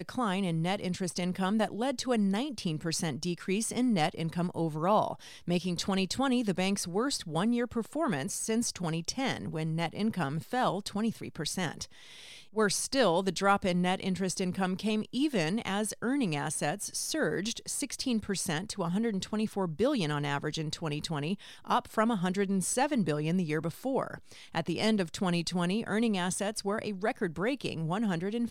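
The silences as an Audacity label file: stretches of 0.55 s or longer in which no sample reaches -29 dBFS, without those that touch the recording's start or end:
11.830000	12.570000	silence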